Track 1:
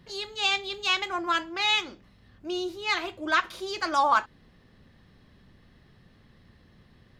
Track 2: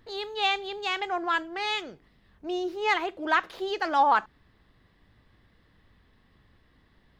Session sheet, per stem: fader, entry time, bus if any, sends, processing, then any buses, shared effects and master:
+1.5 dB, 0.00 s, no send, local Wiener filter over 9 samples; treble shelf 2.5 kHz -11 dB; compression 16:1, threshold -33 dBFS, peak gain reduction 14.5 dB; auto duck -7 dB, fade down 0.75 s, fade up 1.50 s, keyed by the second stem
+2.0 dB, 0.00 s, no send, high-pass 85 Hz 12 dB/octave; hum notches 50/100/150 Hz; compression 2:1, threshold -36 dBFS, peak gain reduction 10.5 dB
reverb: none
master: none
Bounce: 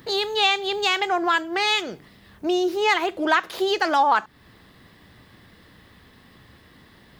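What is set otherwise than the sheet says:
stem 2 +2.0 dB -> +12.5 dB; master: extra treble shelf 6.3 kHz +11 dB

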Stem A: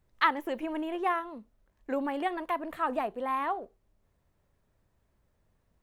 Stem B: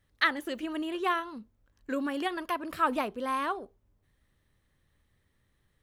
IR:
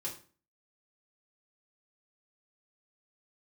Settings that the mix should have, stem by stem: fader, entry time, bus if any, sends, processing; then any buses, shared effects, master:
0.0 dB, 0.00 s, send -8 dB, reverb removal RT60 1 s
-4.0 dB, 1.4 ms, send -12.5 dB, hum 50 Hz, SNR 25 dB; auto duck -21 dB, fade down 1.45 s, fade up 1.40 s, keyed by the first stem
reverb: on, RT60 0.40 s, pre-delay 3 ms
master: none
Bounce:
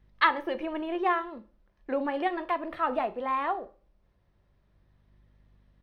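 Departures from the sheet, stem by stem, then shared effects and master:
stem A: missing reverb removal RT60 1 s; master: extra Savitzky-Golay filter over 15 samples

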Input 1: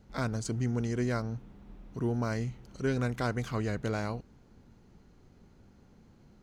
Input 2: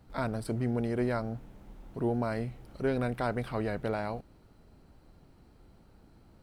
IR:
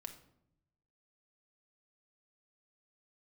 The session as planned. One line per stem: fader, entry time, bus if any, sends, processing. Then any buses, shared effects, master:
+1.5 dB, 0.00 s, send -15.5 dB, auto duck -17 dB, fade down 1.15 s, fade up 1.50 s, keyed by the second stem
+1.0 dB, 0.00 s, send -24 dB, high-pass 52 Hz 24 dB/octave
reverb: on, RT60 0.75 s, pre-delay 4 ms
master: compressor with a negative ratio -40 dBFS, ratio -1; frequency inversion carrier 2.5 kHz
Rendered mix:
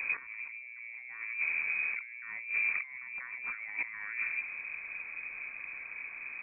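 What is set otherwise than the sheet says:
stem 1 +1.5 dB -> +8.0 dB; reverb return +9.5 dB

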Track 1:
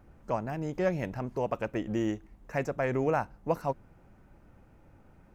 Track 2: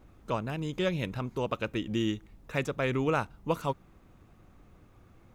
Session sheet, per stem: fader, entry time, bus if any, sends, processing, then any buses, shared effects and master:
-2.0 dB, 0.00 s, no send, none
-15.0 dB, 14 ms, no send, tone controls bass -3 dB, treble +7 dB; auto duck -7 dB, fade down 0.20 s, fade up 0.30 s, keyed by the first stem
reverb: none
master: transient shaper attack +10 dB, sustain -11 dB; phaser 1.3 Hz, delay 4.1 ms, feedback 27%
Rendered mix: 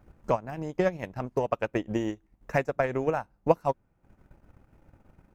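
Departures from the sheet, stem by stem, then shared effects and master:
stem 2: polarity flipped; master: missing phaser 1.3 Hz, delay 4.1 ms, feedback 27%

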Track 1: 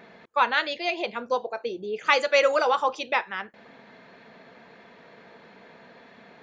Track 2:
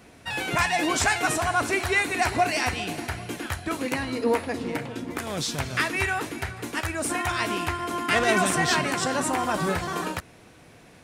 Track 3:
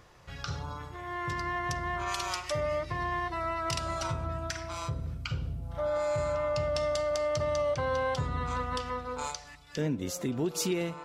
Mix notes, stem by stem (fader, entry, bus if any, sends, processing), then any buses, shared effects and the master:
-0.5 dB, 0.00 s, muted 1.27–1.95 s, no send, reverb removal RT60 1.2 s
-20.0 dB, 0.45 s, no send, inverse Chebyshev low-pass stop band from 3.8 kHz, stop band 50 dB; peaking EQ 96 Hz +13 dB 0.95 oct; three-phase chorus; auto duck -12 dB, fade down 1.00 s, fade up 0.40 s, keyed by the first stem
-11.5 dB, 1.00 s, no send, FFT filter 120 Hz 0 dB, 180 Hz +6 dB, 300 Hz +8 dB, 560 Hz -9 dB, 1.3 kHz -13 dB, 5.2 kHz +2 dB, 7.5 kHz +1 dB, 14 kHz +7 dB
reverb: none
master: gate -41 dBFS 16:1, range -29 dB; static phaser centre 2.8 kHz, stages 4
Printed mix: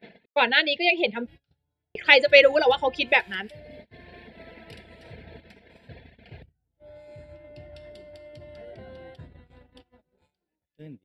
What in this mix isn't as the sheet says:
stem 1 -0.5 dB -> +9.0 dB; stem 2: missing peaking EQ 96 Hz +13 dB 0.95 oct; stem 3: missing FFT filter 120 Hz 0 dB, 180 Hz +6 dB, 300 Hz +8 dB, 560 Hz -9 dB, 1.3 kHz -13 dB, 5.2 kHz +2 dB, 7.5 kHz +1 dB, 14 kHz +7 dB

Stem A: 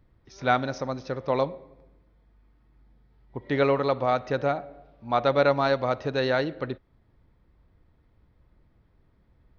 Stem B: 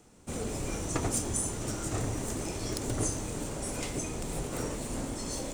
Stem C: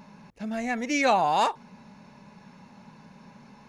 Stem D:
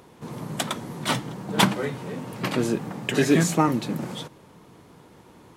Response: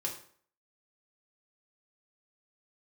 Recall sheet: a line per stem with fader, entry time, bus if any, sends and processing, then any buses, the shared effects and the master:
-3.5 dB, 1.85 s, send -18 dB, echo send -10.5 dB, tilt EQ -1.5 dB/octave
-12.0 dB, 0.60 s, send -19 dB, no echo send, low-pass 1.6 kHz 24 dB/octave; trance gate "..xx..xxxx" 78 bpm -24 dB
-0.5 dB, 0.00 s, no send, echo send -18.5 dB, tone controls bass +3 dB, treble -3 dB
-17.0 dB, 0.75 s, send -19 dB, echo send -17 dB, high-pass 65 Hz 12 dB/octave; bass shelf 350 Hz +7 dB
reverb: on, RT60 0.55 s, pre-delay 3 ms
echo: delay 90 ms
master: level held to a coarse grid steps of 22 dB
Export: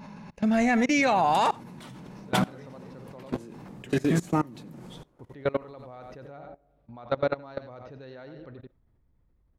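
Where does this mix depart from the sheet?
stem A: send off; stem C -0.5 dB -> +9.5 dB; stem D -17.0 dB -> -6.0 dB

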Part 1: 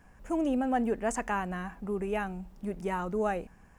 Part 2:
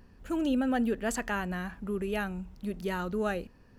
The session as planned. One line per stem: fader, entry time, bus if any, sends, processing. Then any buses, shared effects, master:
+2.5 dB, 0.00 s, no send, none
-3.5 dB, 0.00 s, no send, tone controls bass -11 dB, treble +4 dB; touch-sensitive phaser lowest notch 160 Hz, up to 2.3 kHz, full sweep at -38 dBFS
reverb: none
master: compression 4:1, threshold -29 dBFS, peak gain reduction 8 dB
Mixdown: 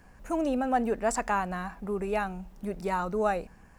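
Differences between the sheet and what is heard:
stem 2: polarity flipped; master: missing compression 4:1, threshold -29 dBFS, peak gain reduction 8 dB

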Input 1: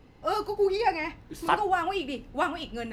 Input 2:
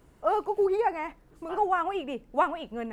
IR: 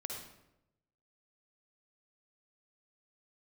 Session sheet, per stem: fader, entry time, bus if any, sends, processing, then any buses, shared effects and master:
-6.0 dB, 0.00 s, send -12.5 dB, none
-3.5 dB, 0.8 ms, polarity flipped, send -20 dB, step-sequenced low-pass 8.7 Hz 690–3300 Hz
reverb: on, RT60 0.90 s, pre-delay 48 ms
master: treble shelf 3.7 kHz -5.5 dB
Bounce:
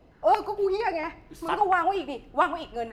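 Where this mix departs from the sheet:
stem 2: polarity flipped; master: missing treble shelf 3.7 kHz -5.5 dB

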